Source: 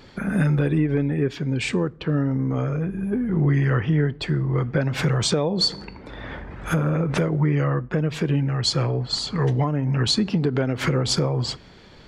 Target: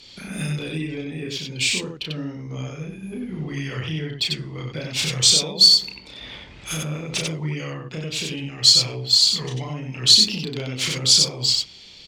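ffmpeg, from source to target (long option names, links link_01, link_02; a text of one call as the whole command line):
ffmpeg -i in.wav -af "aecho=1:1:32.07|93.29:0.708|0.708,aexciter=amount=8.5:drive=6.8:freq=2400,adynamicsmooth=sensitivity=1:basefreq=7800,volume=-11dB" out.wav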